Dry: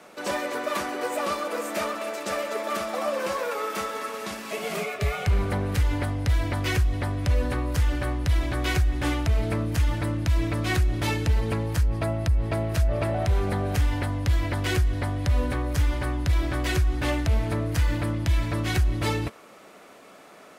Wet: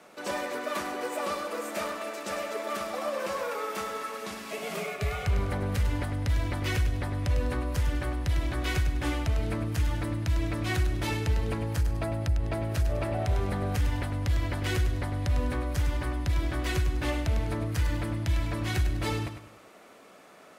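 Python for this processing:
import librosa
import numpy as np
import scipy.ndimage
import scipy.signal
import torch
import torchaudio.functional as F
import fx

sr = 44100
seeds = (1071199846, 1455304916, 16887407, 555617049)

y = fx.echo_feedback(x, sr, ms=101, feedback_pct=35, wet_db=-9)
y = y * librosa.db_to_amplitude(-4.5)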